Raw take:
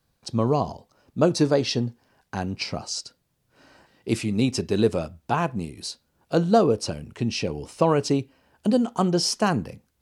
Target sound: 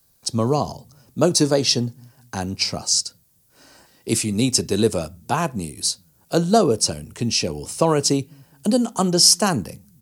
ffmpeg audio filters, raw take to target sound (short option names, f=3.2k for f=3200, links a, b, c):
-filter_complex "[0:a]acrossover=split=200|3800[a][b][c];[a]aecho=1:1:210|420|630:0.112|0.0449|0.018[d];[c]crystalizer=i=4:c=0[e];[d][b][e]amix=inputs=3:normalize=0,volume=2dB"